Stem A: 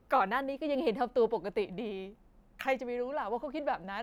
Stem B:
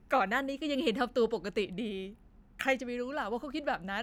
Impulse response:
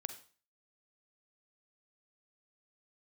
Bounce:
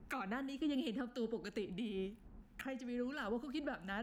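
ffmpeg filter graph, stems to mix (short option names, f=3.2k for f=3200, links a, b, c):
-filter_complex "[0:a]equalizer=f=230:w=2.5:g=15,volume=-14.5dB,asplit=2[a][b];[1:a]acrossover=split=1700[c][d];[c]aeval=exprs='val(0)*(1-0.7/2+0.7/2*cos(2*PI*3*n/s))':c=same[e];[d]aeval=exprs='val(0)*(1-0.7/2-0.7/2*cos(2*PI*3*n/s))':c=same[f];[e][f]amix=inputs=2:normalize=0,volume=1.5dB,asplit=2[g][h];[h]volume=-13.5dB[i];[b]apad=whole_len=177342[j];[g][j]sidechaincompress=threshold=-51dB:ratio=8:attack=37:release=156[k];[2:a]atrim=start_sample=2205[l];[i][l]afir=irnorm=-1:irlink=0[m];[a][k][m]amix=inputs=3:normalize=0,acrossover=split=430[n][o];[o]acompressor=threshold=-39dB:ratio=2.5[p];[n][p]amix=inputs=2:normalize=0,alimiter=level_in=6dB:limit=-24dB:level=0:latency=1:release=451,volume=-6dB"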